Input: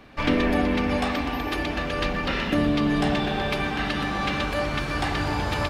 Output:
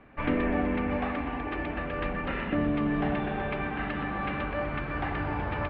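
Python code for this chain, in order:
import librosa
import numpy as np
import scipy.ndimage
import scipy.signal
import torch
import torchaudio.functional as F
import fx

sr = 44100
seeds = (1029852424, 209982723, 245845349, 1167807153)

y = scipy.signal.sosfilt(scipy.signal.butter(4, 2400.0, 'lowpass', fs=sr, output='sos'), x)
y = F.gain(torch.from_numpy(y), -5.0).numpy()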